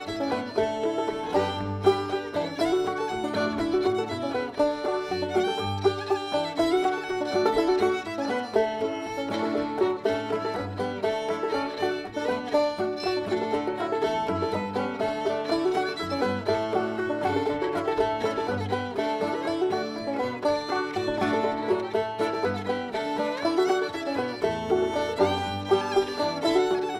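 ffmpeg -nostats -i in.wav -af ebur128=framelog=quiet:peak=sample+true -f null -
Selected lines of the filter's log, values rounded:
Integrated loudness:
  I:         -26.9 LUFS
  Threshold: -36.9 LUFS
Loudness range:
  LRA:         2.0 LU
  Threshold: -47.0 LUFS
  LRA low:   -27.9 LUFS
  LRA high:  -25.9 LUFS
Sample peak:
  Peak:       -7.3 dBFS
True peak:
  Peak:       -7.3 dBFS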